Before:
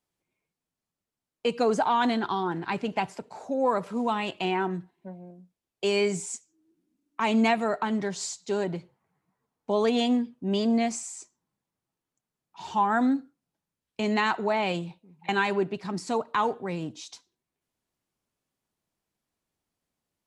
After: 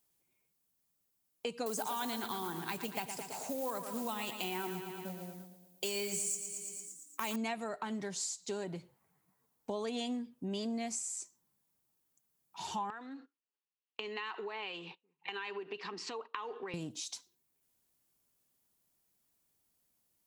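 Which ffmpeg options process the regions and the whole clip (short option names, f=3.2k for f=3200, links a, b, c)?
-filter_complex "[0:a]asettb=1/sr,asplit=3[a][b][c];[a]atrim=end=1.664[d];[b]atrim=start=1.66:end=7.36,asetpts=PTS-STARTPTS,afade=t=in:d=0.004:c=qsin,afade=t=out:st=5.696:d=0.004:c=qsin,highshelf=f=5k:g=11.5,acrusher=bits=5:mode=log:mix=0:aa=0.000001,aecho=1:1:114|228|342|456|570|684|798:0.316|0.183|0.106|0.0617|0.0358|0.0208|0.012,atrim=end_sample=251370[e];[c]atrim=start=7.356[f];[d][e]acrossfade=d=0.004:c1=hsin:c2=qsin[g];[g][f]acrossfade=d=0.004:c1=qsin:c2=hsin,asettb=1/sr,asplit=3[h][i][j];[h]atrim=end=12.904[k];[i]atrim=start=12.9:end=16.74,asetpts=PTS-STARTPTS,afade=t=in:d=0.004:c=qsin,afade=t=out:st=3.836:d=0.004:c=qsin,acompressor=threshold=-33dB:ratio=10:attack=3.2:release=140:knee=1:detection=peak,agate=range=-16dB:threshold=-51dB:ratio=16:release=100:detection=peak,highpass=380,equalizer=f=430:t=q:w=4:g=8,equalizer=f=620:t=q:w=4:g=-9,equalizer=f=1.1k:t=q:w=4:g=7,equalizer=f=1.8k:t=q:w=4:g=5,equalizer=f=2.8k:t=q:w=4:g=10,lowpass=f=5k:w=0.5412,lowpass=f=5k:w=1.3066[l];[j]atrim=start=16.736[m];[k][l]acrossfade=d=0.004:c1=hsin:c2=qsin[n];[n][m]acrossfade=d=0.004:c1=qsin:c2=hsin,aemphasis=mode=production:type=50fm,acompressor=threshold=-38dB:ratio=3,volume=-1dB"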